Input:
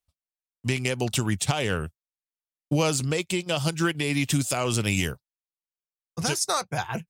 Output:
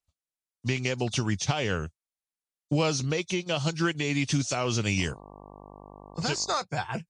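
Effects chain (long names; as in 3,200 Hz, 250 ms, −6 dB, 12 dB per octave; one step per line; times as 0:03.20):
hearing-aid frequency compression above 3,400 Hz 1.5 to 1
0:04.97–0:06.54: hum with harmonics 50 Hz, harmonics 23, −46 dBFS −1 dB per octave
level −2 dB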